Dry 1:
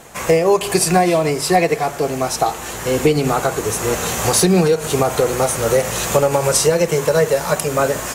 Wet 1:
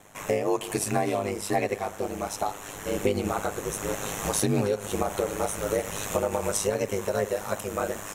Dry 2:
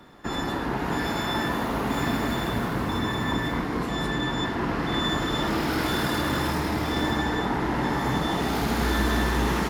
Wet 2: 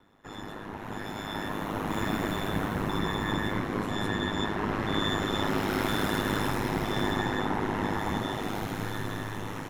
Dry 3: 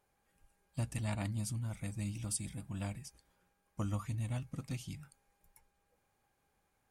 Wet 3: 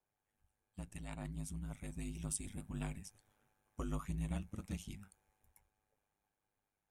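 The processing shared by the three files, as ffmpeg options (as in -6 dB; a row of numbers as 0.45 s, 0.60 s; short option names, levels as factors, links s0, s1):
-af "equalizer=f=4700:w=7.1:g=-11,dynaudnorm=f=190:g=17:m=3.16,aeval=exprs='val(0)*sin(2*PI*51*n/s)':c=same,volume=0.355"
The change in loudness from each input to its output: -11.5 LU, -4.5 LU, -4.5 LU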